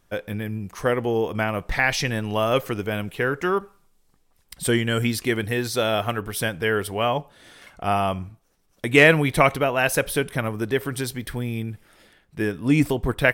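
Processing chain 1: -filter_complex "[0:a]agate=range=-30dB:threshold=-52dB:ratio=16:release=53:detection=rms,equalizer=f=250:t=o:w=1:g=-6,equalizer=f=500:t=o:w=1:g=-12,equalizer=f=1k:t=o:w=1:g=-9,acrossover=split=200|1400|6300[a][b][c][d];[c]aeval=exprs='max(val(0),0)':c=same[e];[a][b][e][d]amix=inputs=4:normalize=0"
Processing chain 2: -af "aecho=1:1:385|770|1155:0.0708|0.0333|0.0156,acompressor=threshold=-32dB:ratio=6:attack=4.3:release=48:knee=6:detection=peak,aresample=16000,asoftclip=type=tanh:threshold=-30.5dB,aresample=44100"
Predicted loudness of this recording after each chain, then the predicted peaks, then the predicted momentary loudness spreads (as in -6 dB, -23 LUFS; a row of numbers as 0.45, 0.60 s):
-29.5, -38.0 LUFS; -3.5, -27.5 dBFS; 9, 8 LU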